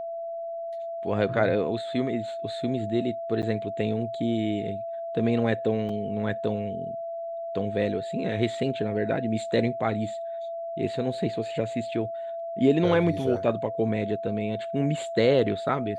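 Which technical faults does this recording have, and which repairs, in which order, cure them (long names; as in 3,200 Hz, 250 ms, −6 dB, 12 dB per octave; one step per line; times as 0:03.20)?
whistle 670 Hz −31 dBFS
0:03.42–0:03.43: drop-out 8.9 ms
0:05.89: drop-out 3.5 ms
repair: notch filter 670 Hz, Q 30
repair the gap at 0:03.42, 8.9 ms
repair the gap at 0:05.89, 3.5 ms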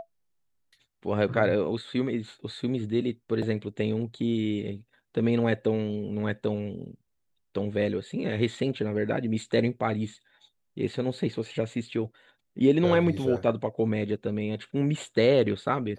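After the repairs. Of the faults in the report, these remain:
none of them is left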